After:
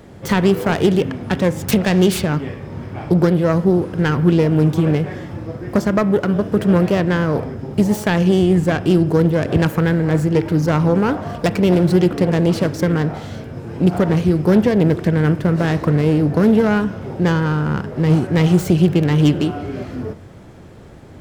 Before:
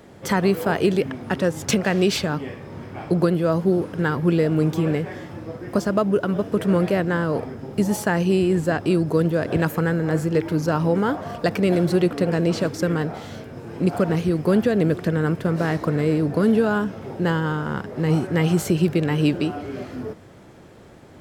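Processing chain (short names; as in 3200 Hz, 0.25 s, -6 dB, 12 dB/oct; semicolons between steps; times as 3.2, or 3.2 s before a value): self-modulated delay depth 0.17 ms; low shelf 150 Hz +9.5 dB; reverb RT60 0.80 s, pre-delay 33 ms, DRR 14.5 dB; gain +2.5 dB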